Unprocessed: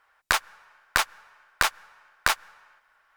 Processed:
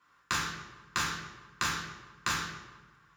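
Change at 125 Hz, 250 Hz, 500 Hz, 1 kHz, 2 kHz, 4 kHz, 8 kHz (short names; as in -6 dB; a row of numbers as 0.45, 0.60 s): +4.5, +5.0, -9.5, -6.5, -7.5, -5.5, -4.5 dB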